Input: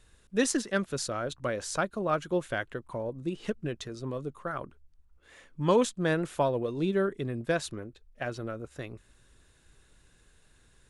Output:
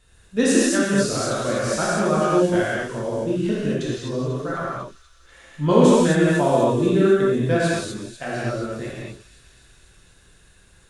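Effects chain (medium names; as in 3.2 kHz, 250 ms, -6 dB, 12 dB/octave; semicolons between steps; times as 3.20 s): dynamic bell 250 Hz, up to +6 dB, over -41 dBFS, Q 1.2; on a send: feedback echo behind a high-pass 247 ms, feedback 73%, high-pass 3.8 kHz, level -10 dB; on the sum: gated-style reverb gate 280 ms flat, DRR -8 dB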